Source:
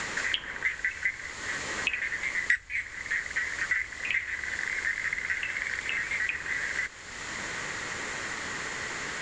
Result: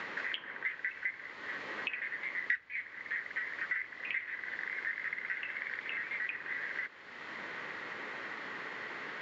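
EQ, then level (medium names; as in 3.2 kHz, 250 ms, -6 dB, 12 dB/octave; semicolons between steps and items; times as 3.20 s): band-pass 220–4500 Hz; distance through air 200 m; -5.0 dB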